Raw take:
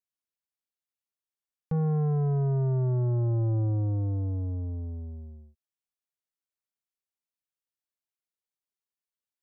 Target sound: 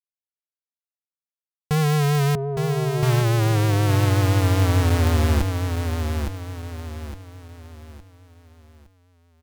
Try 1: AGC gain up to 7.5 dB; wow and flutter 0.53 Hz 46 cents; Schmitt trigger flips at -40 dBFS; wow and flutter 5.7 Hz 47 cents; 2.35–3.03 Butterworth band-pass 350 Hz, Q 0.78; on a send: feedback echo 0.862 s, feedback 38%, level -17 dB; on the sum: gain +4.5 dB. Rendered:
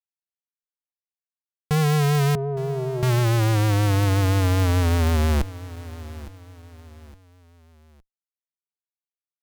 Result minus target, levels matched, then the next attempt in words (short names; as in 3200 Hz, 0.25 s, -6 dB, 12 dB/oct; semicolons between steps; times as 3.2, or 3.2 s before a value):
echo-to-direct -11.5 dB
AGC gain up to 7.5 dB; wow and flutter 0.53 Hz 46 cents; Schmitt trigger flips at -40 dBFS; wow and flutter 5.7 Hz 47 cents; 2.35–3.03 Butterworth band-pass 350 Hz, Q 0.78; on a send: feedback echo 0.862 s, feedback 38%, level -5.5 dB; on the sum: gain +4.5 dB